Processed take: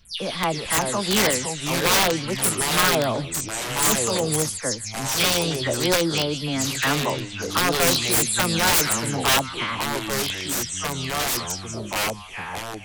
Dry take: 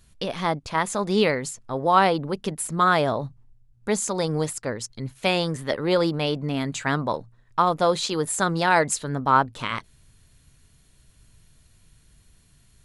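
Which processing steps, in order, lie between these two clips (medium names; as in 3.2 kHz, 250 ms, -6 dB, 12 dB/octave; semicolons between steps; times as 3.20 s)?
delay that grows with frequency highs early, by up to 165 ms; treble shelf 2.8 kHz +9 dB; feedback echo behind a high-pass 154 ms, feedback 40%, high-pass 3.1 kHz, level -5.5 dB; integer overflow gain 12.5 dB; ever faster or slower copies 269 ms, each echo -4 st, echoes 2, each echo -6 dB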